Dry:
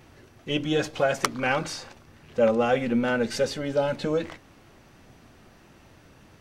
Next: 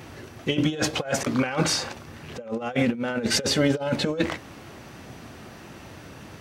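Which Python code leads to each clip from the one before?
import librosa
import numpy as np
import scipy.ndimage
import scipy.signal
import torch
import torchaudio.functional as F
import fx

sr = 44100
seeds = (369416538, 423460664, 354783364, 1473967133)

y = scipy.signal.sosfilt(scipy.signal.butter(2, 66.0, 'highpass', fs=sr, output='sos'), x)
y = fx.over_compress(y, sr, threshold_db=-29.0, ratio=-0.5)
y = y * 10.0 ** (5.5 / 20.0)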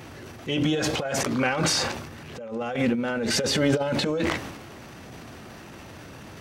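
y = fx.transient(x, sr, attack_db=-7, sustain_db=8)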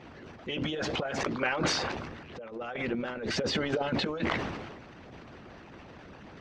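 y = fx.air_absorb(x, sr, metres=180.0)
y = fx.hpss(y, sr, part='harmonic', gain_db=-16)
y = fx.sustainer(y, sr, db_per_s=39.0)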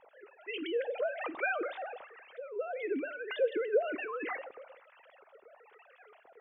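y = fx.sine_speech(x, sr)
y = fx.harmonic_tremolo(y, sr, hz=1.1, depth_pct=70, crossover_hz=850.0)
y = fx.rev_plate(y, sr, seeds[0], rt60_s=0.68, hf_ratio=0.8, predelay_ms=0, drr_db=19.0)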